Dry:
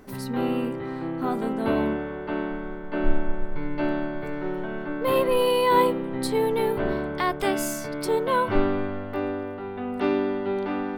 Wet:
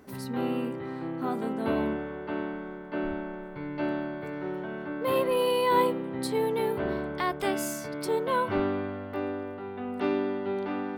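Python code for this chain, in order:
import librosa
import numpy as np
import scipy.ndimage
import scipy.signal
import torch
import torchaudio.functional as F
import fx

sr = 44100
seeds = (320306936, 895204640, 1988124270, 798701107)

y = scipy.signal.sosfilt(scipy.signal.butter(2, 59.0, 'highpass', fs=sr, output='sos'), x)
y = F.gain(torch.from_numpy(y), -4.0).numpy()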